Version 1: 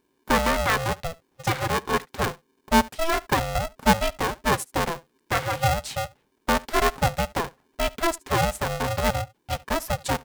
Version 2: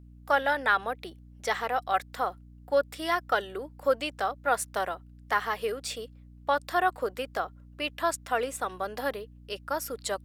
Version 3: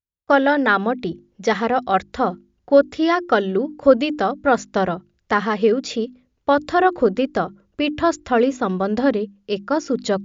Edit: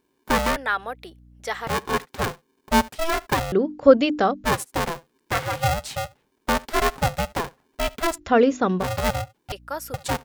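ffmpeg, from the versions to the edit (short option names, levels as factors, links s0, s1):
-filter_complex "[1:a]asplit=2[s0][s1];[2:a]asplit=2[s2][s3];[0:a]asplit=5[s4][s5][s6][s7][s8];[s4]atrim=end=0.562[s9];[s0]atrim=start=0.558:end=1.672[s10];[s5]atrim=start=1.668:end=3.522[s11];[s2]atrim=start=3.518:end=4.452[s12];[s6]atrim=start=4.448:end=8.2[s13];[s3]atrim=start=8.14:end=8.85[s14];[s7]atrim=start=8.79:end=9.522[s15];[s1]atrim=start=9.518:end=9.942[s16];[s8]atrim=start=9.938[s17];[s9][s10]acrossfade=d=0.004:c1=hsin:c2=hsin[s18];[s18][s11]acrossfade=d=0.004:c1=hsin:c2=hsin[s19];[s19][s12]acrossfade=d=0.004:c1=hsin:c2=hsin[s20];[s20][s13]acrossfade=d=0.004:c1=hsin:c2=hsin[s21];[s21][s14]acrossfade=d=0.06:c1=tri:c2=tri[s22];[s22][s15]acrossfade=d=0.06:c1=tri:c2=tri[s23];[s23][s16]acrossfade=d=0.004:c1=hsin:c2=hsin[s24];[s24][s17]acrossfade=d=0.004:c1=hsin:c2=hsin"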